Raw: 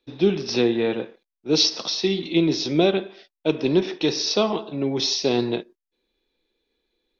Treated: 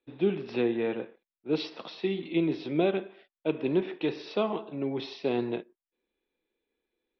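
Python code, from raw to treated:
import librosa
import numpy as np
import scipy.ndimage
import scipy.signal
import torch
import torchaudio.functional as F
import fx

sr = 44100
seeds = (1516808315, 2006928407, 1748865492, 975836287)

y = scipy.signal.sosfilt(scipy.signal.butter(4, 2900.0, 'lowpass', fs=sr, output='sos'), x)
y = fx.low_shelf(y, sr, hz=67.0, db=-10.5)
y = y * librosa.db_to_amplitude(-6.5)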